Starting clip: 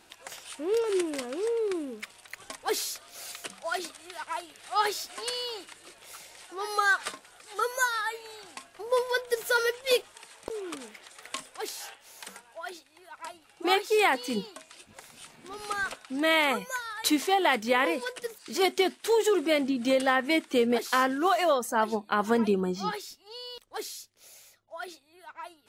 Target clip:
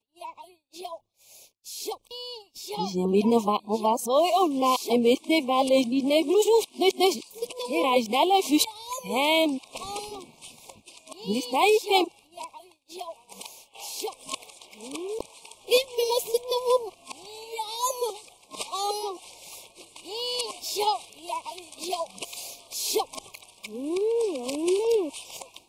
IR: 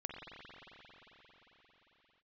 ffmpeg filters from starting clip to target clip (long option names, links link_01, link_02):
-af "areverse,agate=range=-33dB:threshold=-49dB:ratio=3:detection=peak,asuperstop=centerf=1600:order=12:qfactor=1.4,volume=3.5dB"